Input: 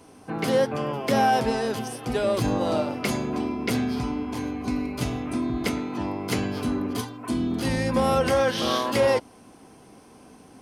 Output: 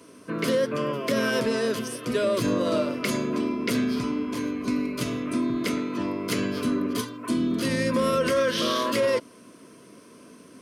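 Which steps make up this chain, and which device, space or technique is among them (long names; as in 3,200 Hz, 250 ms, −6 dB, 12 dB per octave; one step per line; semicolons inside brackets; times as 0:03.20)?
PA system with an anti-feedback notch (high-pass filter 160 Hz 12 dB per octave; Butterworth band-reject 800 Hz, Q 2.7; brickwall limiter −17 dBFS, peak gain reduction 5.5 dB)
level +2 dB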